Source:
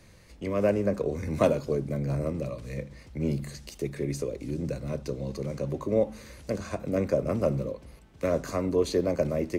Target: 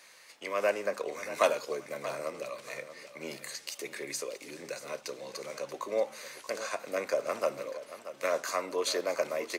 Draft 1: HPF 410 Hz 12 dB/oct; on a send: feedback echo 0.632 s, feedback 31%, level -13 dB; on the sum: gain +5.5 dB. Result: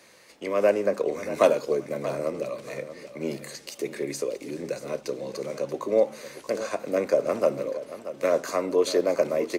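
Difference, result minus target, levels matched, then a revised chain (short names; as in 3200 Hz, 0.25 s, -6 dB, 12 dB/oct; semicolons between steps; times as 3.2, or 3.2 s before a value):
1000 Hz band -4.5 dB
HPF 920 Hz 12 dB/oct; on a send: feedback echo 0.632 s, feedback 31%, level -13 dB; on the sum: gain +5.5 dB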